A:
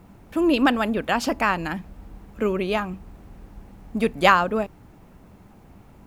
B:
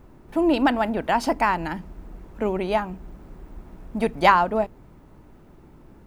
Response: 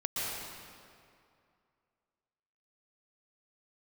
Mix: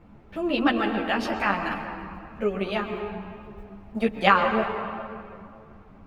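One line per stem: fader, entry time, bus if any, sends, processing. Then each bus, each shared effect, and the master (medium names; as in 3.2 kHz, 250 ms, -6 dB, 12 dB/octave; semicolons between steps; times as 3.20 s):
-1.5 dB, 0.00 s, send -9.5 dB, low-pass 3.3 kHz 12 dB/octave
+1.5 dB, 0.00 s, polarity flipped, no send, gate -36 dBFS, range -15 dB; compression 3:1, threshold -30 dBFS, peak gain reduction 14.5 dB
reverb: on, RT60 2.4 s, pre-delay 111 ms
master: three-phase chorus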